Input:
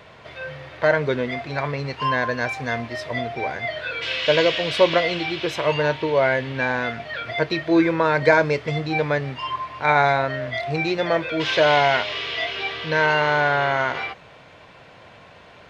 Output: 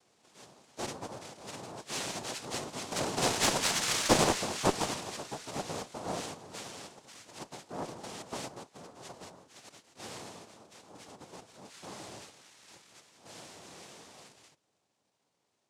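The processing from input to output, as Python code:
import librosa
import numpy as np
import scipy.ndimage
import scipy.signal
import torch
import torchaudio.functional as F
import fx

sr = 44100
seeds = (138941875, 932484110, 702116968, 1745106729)

y = fx.doppler_pass(x, sr, speed_mps=21, closest_m=5.7, pass_at_s=3.52)
y = fx.noise_vocoder(y, sr, seeds[0], bands=2)
y = fx.cheby_harmonics(y, sr, harmonics=(2, 4), levels_db=(-10, -11), full_scale_db=-9.0)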